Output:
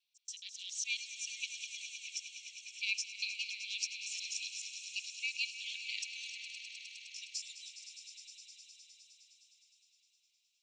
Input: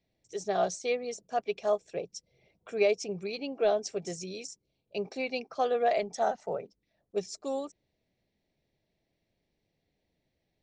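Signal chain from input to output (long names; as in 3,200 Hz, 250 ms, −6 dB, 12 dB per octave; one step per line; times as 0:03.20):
reversed piece by piece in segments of 140 ms
Butterworth high-pass 2,500 Hz 72 dB per octave
high-shelf EQ 3,400 Hz −9.5 dB
echo that builds up and dies away 103 ms, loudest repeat 5, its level −13 dB
feedback echo with a swinging delay time 232 ms, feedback 75%, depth 205 cents, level −20.5 dB
level +9 dB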